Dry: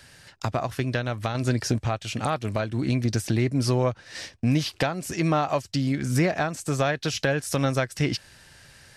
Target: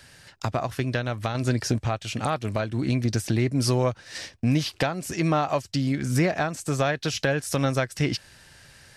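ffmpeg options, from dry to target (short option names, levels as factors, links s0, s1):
-filter_complex "[0:a]asettb=1/sr,asplit=3[s0][s1][s2];[s0]atrim=end=3.584[s3];[s1]atrim=start=3.58:end=4.18,asetpts=PTS-STARTPTS,afade=t=in:d=0.004:c=qsin,afade=t=out:st=0.596:d=0.004:c=qsin,highshelf=f=4900:g=6[s4];[s2]atrim=start=4.176[s5];[s3][s4]acrossfade=d=0.004:c1=hsin:c2=qsin[s6];[s6][s5]acrossfade=d=0.004:c1=qsin:c2=hsin"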